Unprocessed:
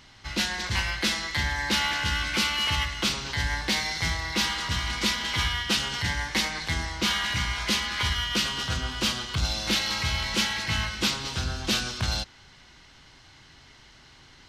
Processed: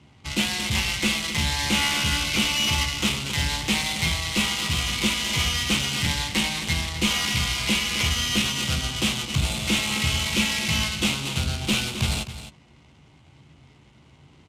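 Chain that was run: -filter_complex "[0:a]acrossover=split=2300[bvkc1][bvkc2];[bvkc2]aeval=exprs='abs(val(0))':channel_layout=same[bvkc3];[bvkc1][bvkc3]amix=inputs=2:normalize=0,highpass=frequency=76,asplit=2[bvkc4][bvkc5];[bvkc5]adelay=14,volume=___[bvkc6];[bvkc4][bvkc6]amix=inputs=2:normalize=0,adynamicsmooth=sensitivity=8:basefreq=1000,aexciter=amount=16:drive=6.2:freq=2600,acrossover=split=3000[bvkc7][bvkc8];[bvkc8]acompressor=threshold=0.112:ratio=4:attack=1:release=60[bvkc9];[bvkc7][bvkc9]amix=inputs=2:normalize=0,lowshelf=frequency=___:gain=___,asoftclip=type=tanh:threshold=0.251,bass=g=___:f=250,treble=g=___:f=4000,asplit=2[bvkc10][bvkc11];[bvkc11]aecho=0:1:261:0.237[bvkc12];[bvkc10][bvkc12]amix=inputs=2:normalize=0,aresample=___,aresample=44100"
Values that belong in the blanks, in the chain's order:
0.398, 110, -10, 12, -7, 32000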